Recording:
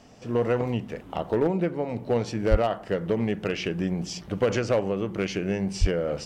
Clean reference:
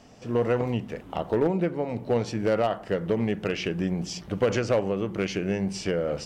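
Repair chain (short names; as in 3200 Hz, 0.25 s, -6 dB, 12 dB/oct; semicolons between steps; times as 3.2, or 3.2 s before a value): 2.5–2.62 HPF 140 Hz 24 dB/oct; 5.8–5.92 HPF 140 Hz 24 dB/oct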